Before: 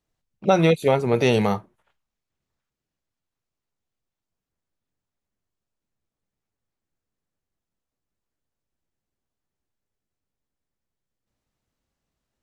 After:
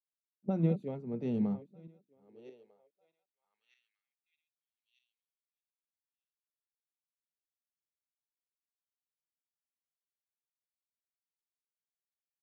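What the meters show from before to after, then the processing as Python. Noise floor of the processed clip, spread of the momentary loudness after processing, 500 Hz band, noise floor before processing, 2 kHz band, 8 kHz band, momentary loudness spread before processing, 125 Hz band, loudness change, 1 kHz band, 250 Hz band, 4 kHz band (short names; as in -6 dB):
under -85 dBFS, 10 LU, -19.0 dB, under -85 dBFS, -30.5 dB, under -30 dB, 9 LU, -10.0 dB, -13.5 dB, -24.5 dB, -9.0 dB, under -30 dB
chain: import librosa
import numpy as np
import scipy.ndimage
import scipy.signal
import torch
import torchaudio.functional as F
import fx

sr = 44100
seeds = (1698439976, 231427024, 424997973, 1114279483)

y = fx.reverse_delay_fb(x, sr, ms=624, feedback_pct=47, wet_db=-12.5)
y = fx.filter_sweep_bandpass(y, sr, from_hz=210.0, to_hz=3100.0, start_s=1.84, end_s=4.64, q=2.3)
y = fx.band_widen(y, sr, depth_pct=100)
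y = y * 10.0 ** (-9.0 / 20.0)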